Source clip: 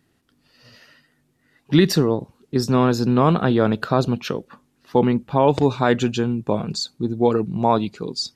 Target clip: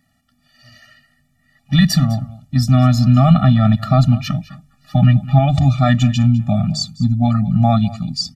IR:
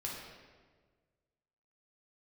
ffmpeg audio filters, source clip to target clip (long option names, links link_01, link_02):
-filter_complex "[0:a]lowshelf=frequency=470:gain=-4,bandreject=frequency=50:width_type=h:width=6,bandreject=frequency=100:width_type=h:width=6,bandreject=frequency=150:width_type=h:width=6,aecho=1:1:204:0.119,asubboost=boost=7:cutoff=140,asettb=1/sr,asplit=3[link_01][link_02][link_03];[link_01]atrim=end=4.314[link_04];[link_02]atrim=start=4.31:end=5.39,asetpts=PTS-STARTPTS,afade=type=in:duration=0.004:curve=qsin,afade=type=out:start_time=1.076:duration=0.004:curve=qsin,aecho=1:1:6.4:0.62,atrim=end_sample=47628[link_05];[link_03]atrim=start=5.386[link_06];[link_04][link_05]acrossfade=duration=0.004:curve1=hsin:curve2=qsin[link_07];[link_07][link_06]acrossfade=duration=0.004:curve1=qsin:curve2=hsin,afftfilt=real='re*eq(mod(floor(b*sr/1024/280),2),0)':imag='im*eq(mod(floor(b*sr/1024/280),2),0)':win_size=1024:overlap=0.75,volume=6.5dB"